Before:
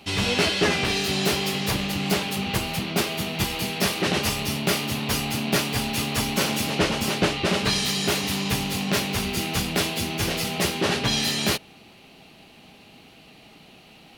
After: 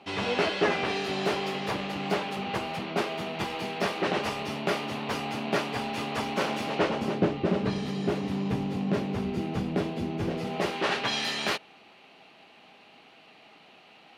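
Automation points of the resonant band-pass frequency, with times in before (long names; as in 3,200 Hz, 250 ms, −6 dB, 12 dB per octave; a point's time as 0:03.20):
resonant band-pass, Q 0.61
0:06.80 740 Hz
0:07.25 280 Hz
0:10.35 280 Hz
0:10.85 1,200 Hz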